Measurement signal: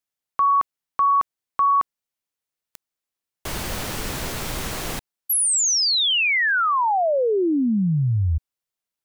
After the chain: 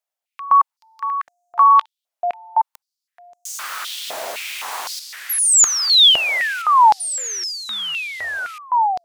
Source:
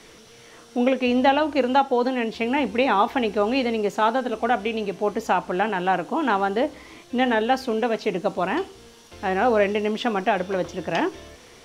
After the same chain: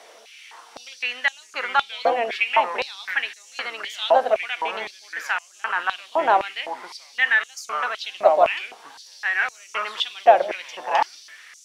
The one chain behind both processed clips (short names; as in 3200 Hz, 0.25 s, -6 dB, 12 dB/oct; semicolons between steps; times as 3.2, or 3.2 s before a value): echoes that change speed 0.328 s, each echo -4 st, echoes 2, each echo -6 dB; stepped high-pass 3.9 Hz 650–6600 Hz; gain -1 dB